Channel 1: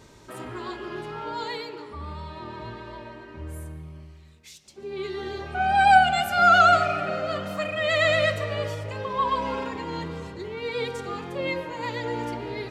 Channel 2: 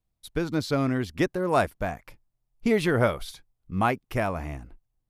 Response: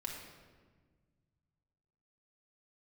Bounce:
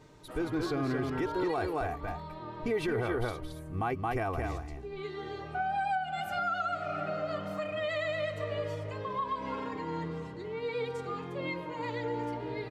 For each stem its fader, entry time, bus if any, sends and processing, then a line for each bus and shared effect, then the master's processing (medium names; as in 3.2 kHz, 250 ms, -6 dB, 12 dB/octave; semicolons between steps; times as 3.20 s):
-5.0 dB, 0.00 s, no send, no echo send, comb 6.6 ms, depth 50%; compression 6:1, threshold -24 dBFS, peak gain reduction 15.5 dB
-4.0 dB, 0.00 s, no send, echo send -5.5 dB, comb 2.6 ms, depth 68%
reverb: none
echo: delay 222 ms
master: treble shelf 3 kHz -8.5 dB; peak limiter -23 dBFS, peak gain reduction 9.5 dB